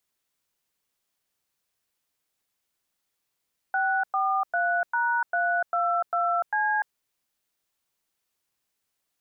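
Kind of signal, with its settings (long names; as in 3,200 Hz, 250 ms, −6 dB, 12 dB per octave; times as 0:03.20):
touch tones "643#322C", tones 295 ms, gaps 103 ms, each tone −24.5 dBFS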